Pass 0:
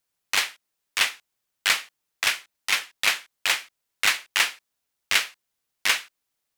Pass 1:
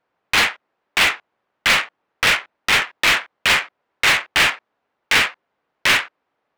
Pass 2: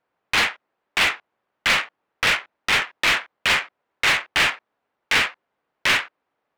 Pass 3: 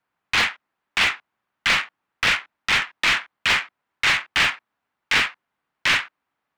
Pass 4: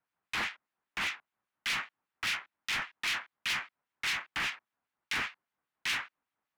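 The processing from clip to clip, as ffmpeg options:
ffmpeg -i in.wav -filter_complex "[0:a]adynamicsmooth=sensitivity=3.5:basefreq=1100,asplit=2[link_01][link_02];[link_02]highpass=frequency=720:poles=1,volume=30dB,asoftclip=type=tanh:threshold=-6.5dB[link_03];[link_01][link_03]amix=inputs=2:normalize=0,lowpass=frequency=4300:poles=1,volume=-6dB" out.wav
ffmpeg -i in.wav -af "highshelf=frequency=9300:gain=-6,volume=-3dB" out.wav
ffmpeg -i in.wav -filter_complex "[0:a]acrossover=split=8500[link_01][link_02];[link_02]acompressor=threshold=-47dB:ratio=4:attack=1:release=60[link_03];[link_01][link_03]amix=inputs=2:normalize=0,acrossover=split=340|710|6200[link_04][link_05][link_06][link_07];[link_05]acrusher=bits=4:mix=0:aa=0.000001[link_08];[link_04][link_08][link_06][link_07]amix=inputs=4:normalize=0" out.wav
ffmpeg -i in.wav -filter_complex "[0:a]asoftclip=type=tanh:threshold=-19.5dB,acrossover=split=2000[link_01][link_02];[link_01]aeval=exprs='val(0)*(1-0.7/2+0.7/2*cos(2*PI*5*n/s))':channel_layout=same[link_03];[link_02]aeval=exprs='val(0)*(1-0.7/2-0.7/2*cos(2*PI*5*n/s))':channel_layout=same[link_04];[link_03][link_04]amix=inputs=2:normalize=0,volume=-5.5dB" out.wav

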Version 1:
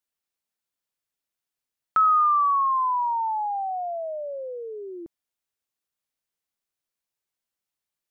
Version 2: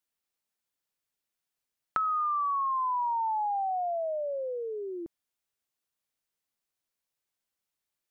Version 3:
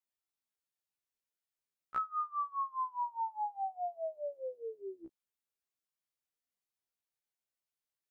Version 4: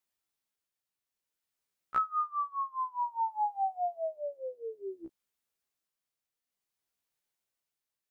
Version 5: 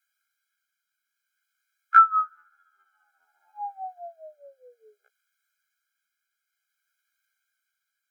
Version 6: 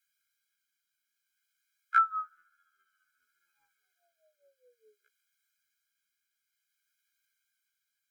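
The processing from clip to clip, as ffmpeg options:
ffmpeg -i in.wav -af "acompressor=threshold=-27dB:ratio=12" out.wav
ffmpeg -i in.wav -af "afftfilt=real='re*1.73*eq(mod(b,3),0)':imag='im*1.73*eq(mod(b,3),0)':win_size=2048:overlap=0.75,volume=-6dB" out.wav
ffmpeg -i in.wav -af "tremolo=f=0.56:d=0.4,volume=6dB" out.wav
ffmpeg -i in.wav -af "highpass=frequency=1500:width_type=q:width=5.6,afreqshift=43,afftfilt=real='re*eq(mod(floor(b*sr/1024/420),2),1)':imag='im*eq(mod(floor(b*sr/1024/420),2),1)':win_size=1024:overlap=0.75,volume=7.5dB" out.wav
ffmpeg -i in.wav -af "asuperstop=centerf=770:order=4:qfactor=0.51" out.wav

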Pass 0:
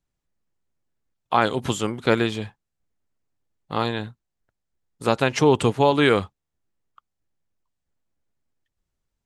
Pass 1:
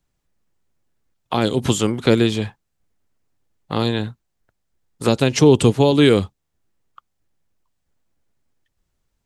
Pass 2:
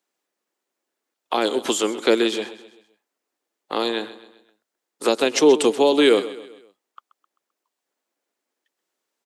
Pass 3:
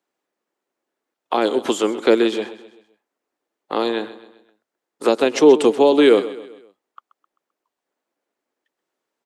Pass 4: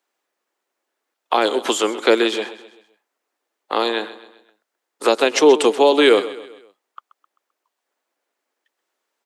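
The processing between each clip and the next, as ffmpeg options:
ffmpeg -i in.wav -filter_complex "[0:a]acrossover=split=490|3000[link_01][link_02][link_03];[link_02]acompressor=threshold=-34dB:ratio=6[link_04];[link_01][link_04][link_03]amix=inputs=3:normalize=0,volume=7.5dB" out.wav
ffmpeg -i in.wav -af "highpass=frequency=310:width=0.5412,highpass=frequency=310:width=1.3066,aecho=1:1:130|260|390|520:0.168|0.0755|0.034|0.0153" out.wav
ffmpeg -i in.wav -af "highshelf=frequency=2700:gain=-10,volume=3.5dB" out.wav
ffmpeg -i in.wav -af "highpass=frequency=760:poles=1,volume=5.5dB" out.wav

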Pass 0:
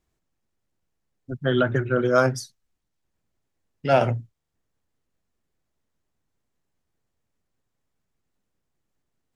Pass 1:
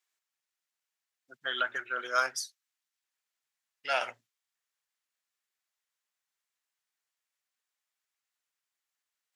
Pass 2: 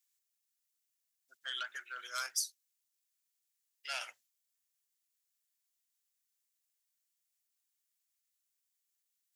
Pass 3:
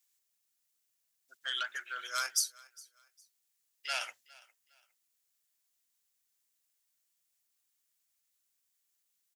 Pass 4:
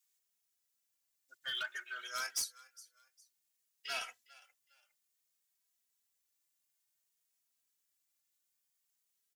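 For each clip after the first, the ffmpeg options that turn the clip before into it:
ffmpeg -i in.wav -af "highpass=1500" out.wav
ffmpeg -i in.wav -af "aeval=exprs='0.211*sin(PI/2*1.58*val(0)/0.211)':channel_layout=same,aderivative,volume=-4.5dB" out.wav
ffmpeg -i in.wav -af "aecho=1:1:408|816:0.0708|0.0205,volume=4.5dB" out.wav
ffmpeg -i in.wav -filter_complex "[0:a]volume=27.5dB,asoftclip=hard,volume=-27.5dB,asplit=2[link_01][link_02];[link_02]adelay=2.8,afreqshift=0.57[link_03];[link_01][link_03]amix=inputs=2:normalize=1" out.wav

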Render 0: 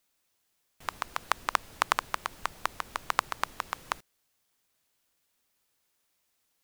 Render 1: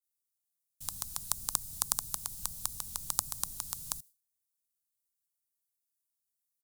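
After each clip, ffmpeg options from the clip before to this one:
ffmpeg -i in.wav -filter_complex "[0:a]firequalizer=gain_entry='entry(140,0);entry(380,-21);entry(780,-17);entry(2000,-19);entry(3900,-1);entry(9100,11)':delay=0.05:min_phase=1,agate=range=-33dB:threshold=-52dB:ratio=3:detection=peak,acrossover=split=410|1700|4400[link_01][link_02][link_03][link_04];[link_03]acompressor=threshold=-54dB:ratio=6[link_05];[link_01][link_02][link_05][link_04]amix=inputs=4:normalize=0,volume=3dB" out.wav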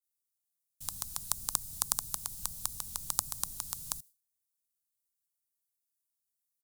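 ffmpeg -i in.wav -af anull out.wav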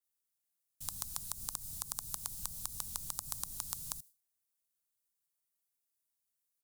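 ffmpeg -i in.wav -af "alimiter=limit=-12dB:level=0:latency=1:release=111" out.wav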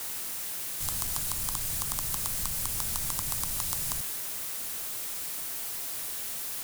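ffmpeg -i in.wav -af "aeval=exprs='val(0)+0.5*0.0266*sgn(val(0))':channel_layout=same,volume=3dB" out.wav

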